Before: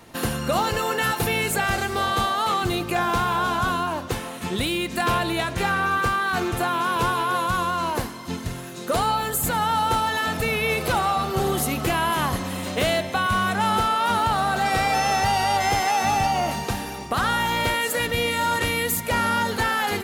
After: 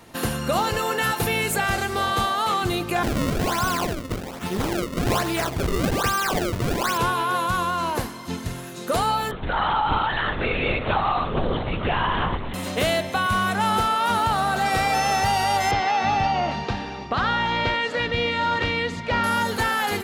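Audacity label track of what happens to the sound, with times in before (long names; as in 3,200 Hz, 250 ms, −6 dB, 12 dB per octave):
3.030000	6.980000	sample-and-hold swept by an LFO 31×, swing 160% 1.2 Hz
9.310000	12.540000	linear-prediction vocoder at 8 kHz whisper
15.710000	19.240000	low-pass filter 4,700 Hz 24 dB per octave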